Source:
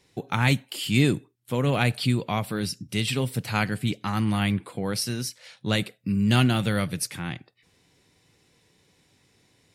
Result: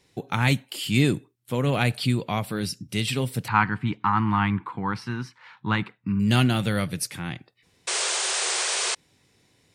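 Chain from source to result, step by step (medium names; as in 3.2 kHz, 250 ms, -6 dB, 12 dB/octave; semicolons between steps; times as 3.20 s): 3.48–6.20 s: FFT filter 320 Hz 0 dB, 610 Hz -13 dB, 930 Hz +14 dB, 12 kHz -28 dB; 7.87–8.95 s: painted sound noise 350–9500 Hz -26 dBFS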